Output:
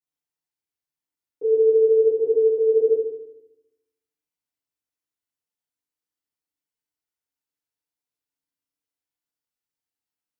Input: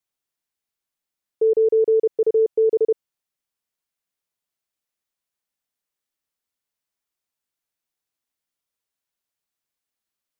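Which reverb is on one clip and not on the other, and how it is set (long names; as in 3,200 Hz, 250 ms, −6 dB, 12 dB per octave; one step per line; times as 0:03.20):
feedback delay network reverb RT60 0.87 s, low-frequency decay 1.45×, high-frequency decay 0.8×, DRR −8 dB
level −14.5 dB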